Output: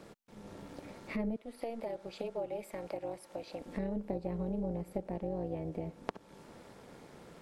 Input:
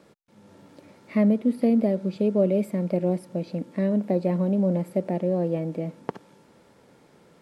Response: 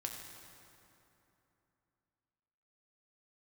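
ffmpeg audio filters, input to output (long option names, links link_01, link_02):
-filter_complex "[0:a]asettb=1/sr,asplit=3[link_01][link_02][link_03];[link_01]atrim=end=1.364[link_04];[link_02]atrim=start=1.36:end=3.66,asetpts=PTS-STARTPTS,afade=type=in:duration=0.004:curve=qsin,afade=type=out:start_time=2.296:duration=0.004:curve=qsin,highpass=620[link_05];[link_03]atrim=start=3.656[link_06];[link_04][link_05]acrossfade=duration=0.004:curve1=hsin:curve2=qsin[link_07];[link_07][link_06]acrossfade=duration=0.004:curve1=qsin:curve2=hsin,acompressor=threshold=-42dB:ratio=3,tremolo=f=230:d=0.71,volume=5.5dB"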